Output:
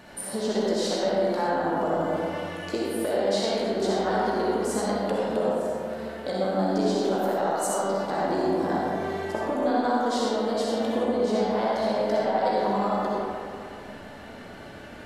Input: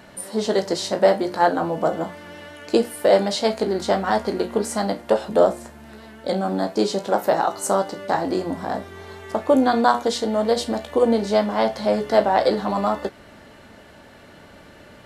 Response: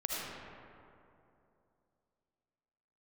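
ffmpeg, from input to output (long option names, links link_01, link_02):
-filter_complex "[0:a]acompressor=threshold=-25dB:ratio=6[link_01];[1:a]atrim=start_sample=2205,asetrate=52920,aresample=44100[link_02];[link_01][link_02]afir=irnorm=-1:irlink=0"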